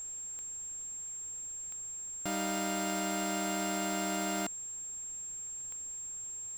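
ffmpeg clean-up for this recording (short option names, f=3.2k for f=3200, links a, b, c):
-af "adeclick=t=4,bandreject=f=7.5k:w=30,agate=range=-21dB:threshold=-34dB"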